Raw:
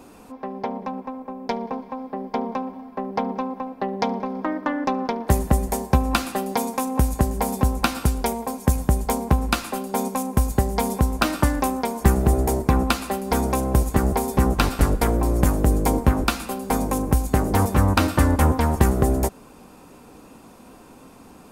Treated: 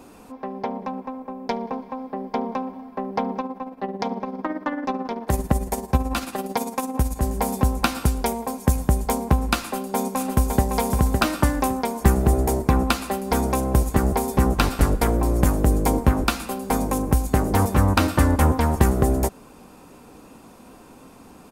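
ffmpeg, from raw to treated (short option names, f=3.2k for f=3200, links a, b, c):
-filter_complex "[0:a]asettb=1/sr,asplit=3[a][b][c];[a]atrim=end=3.404[d];[b]atrim=start=3.4:end=7.24,asetpts=PTS-STARTPTS,afade=t=in:d=0.004:c=qsin,afade=t=out:st=3.836:d=0.004:c=qsin,tremolo=f=18:d=0.57[e];[c]atrim=start=7.236[f];[d][e]acrossfade=d=0.004:c1=hsin:c2=qsin[g];[g][f]acrossfade=d=0.004:c1=qsin:c2=hsin,asplit=2[h][i];[i]afade=t=in:st=9.6:d=0.01,afade=t=out:st=10.68:d=0.01,aecho=0:1:560|1120|1680:0.595662|0.148916|0.0372289[j];[h][j]amix=inputs=2:normalize=0"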